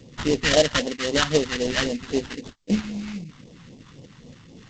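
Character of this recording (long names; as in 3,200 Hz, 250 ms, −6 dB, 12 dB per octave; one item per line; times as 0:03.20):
aliases and images of a low sample rate 2,400 Hz, jitter 20%
tremolo saw up 3.2 Hz, depth 30%
phaser sweep stages 2, 3.8 Hz, lowest notch 460–1,400 Hz
G.722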